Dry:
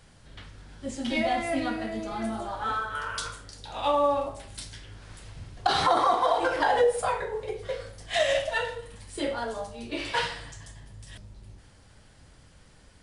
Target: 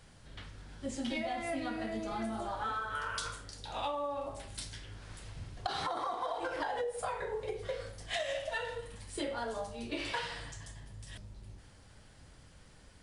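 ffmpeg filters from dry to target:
-af "acompressor=threshold=-30dB:ratio=12,volume=-2.5dB"

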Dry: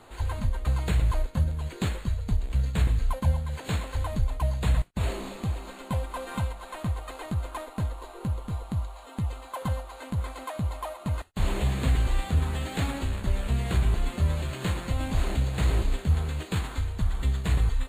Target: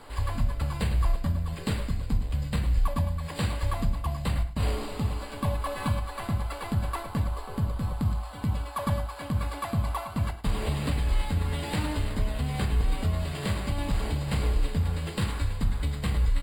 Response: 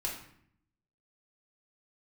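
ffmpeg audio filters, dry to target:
-filter_complex "[0:a]alimiter=limit=-20.5dB:level=0:latency=1:release=486,aecho=1:1:114|355:0.178|0.112,asplit=2[a][b];[1:a]atrim=start_sample=2205,afade=t=out:st=0.16:d=0.01,atrim=end_sample=7497[c];[b][c]afir=irnorm=-1:irlink=0,volume=-6dB[d];[a][d]amix=inputs=2:normalize=0,asetrate=48000,aresample=44100"

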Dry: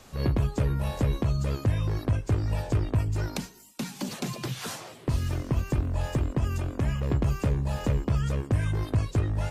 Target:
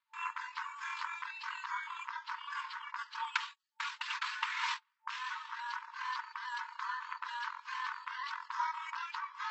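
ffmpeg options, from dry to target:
-af "aemphasis=mode=reproduction:type=riaa,asetrate=26990,aresample=44100,atempo=1.63392,agate=range=-35dB:threshold=-33dB:ratio=16:detection=peak,afftfilt=real='re*between(b*sr/4096,890,7900)':imag='im*between(b*sr/4096,890,7900)':win_size=4096:overlap=0.75,volume=11dB"

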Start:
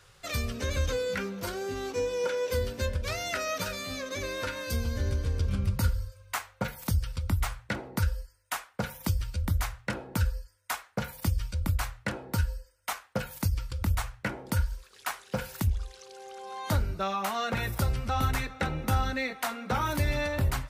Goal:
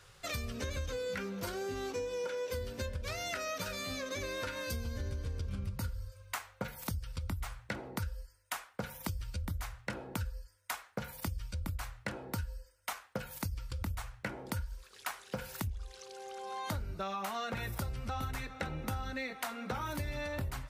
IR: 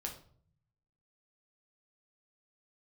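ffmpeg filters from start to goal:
-af "acompressor=threshold=-34dB:ratio=5,volume=-1dB"

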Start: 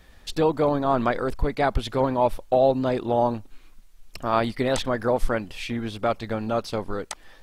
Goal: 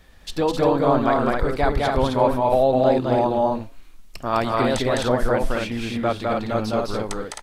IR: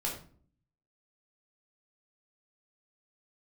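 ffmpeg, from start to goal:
-af "flanger=delay=7.1:depth=2.5:regen=-88:speed=1.1:shape=triangular,aecho=1:1:207|262.4:0.794|0.631,volume=5dB"

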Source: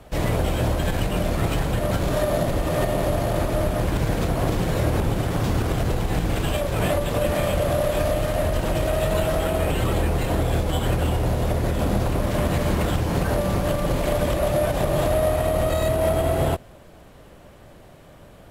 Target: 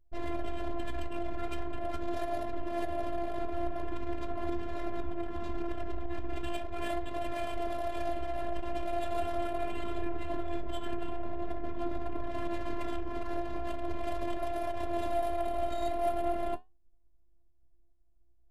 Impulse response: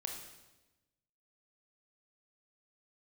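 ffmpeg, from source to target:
-af "anlmdn=158,afftfilt=real='hypot(re,im)*cos(PI*b)':imag='0':win_size=512:overlap=0.75,flanger=delay=9.4:depth=8:regen=65:speed=0.41:shape=triangular,volume=-3.5dB"

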